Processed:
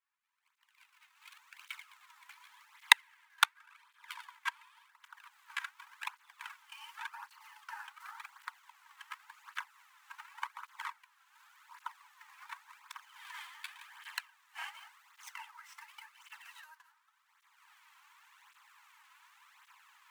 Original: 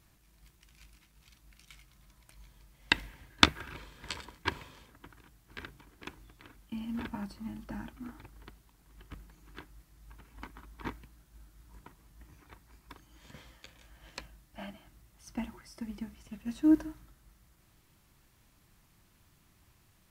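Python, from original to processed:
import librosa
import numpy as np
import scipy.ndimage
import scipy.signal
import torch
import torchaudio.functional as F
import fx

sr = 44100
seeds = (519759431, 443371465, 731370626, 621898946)

y = scipy.ndimage.median_filter(x, 9, mode='constant')
y = fx.recorder_agc(y, sr, target_db=-8.0, rise_db_per_s=23.0, max_gain_db=30)
y = scipy.signal.sosfilt(scipy.signal.butter(12, 870.0, 'highpass', fs=sr, output='sos'), y)
y = fx.flanger_cancel(y, sr, hz=0.89, depth_ms=3.5)
y = F.gain(torch.from_numpy(y), -14.5).numpy()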